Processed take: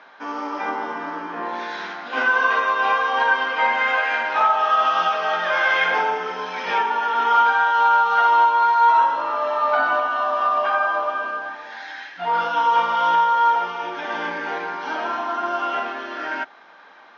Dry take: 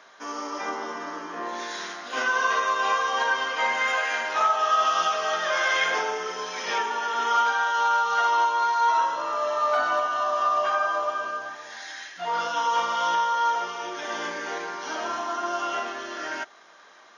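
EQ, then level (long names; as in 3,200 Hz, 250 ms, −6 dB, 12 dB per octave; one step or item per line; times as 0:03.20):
loudspeaker in its box 130–4,400 Hz, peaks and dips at 180 Hz +8 dB, 270 Hz +8 dB, 500 Hz +4 dB, 850 Hz +10 dB, 1,500 Hz +6 dB, 2,400 Hz +5 dB
0.0 dB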